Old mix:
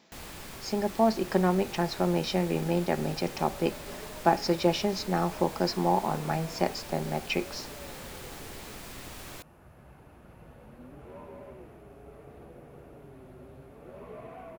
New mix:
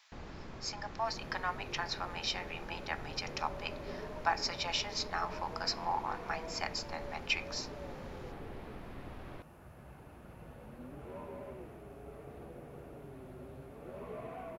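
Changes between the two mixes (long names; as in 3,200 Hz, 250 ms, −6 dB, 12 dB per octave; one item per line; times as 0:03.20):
speech: add high-pass filter 1,000 Hz 24 dB per octave
first sound: add head-to-tape spacing loss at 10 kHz 43 dB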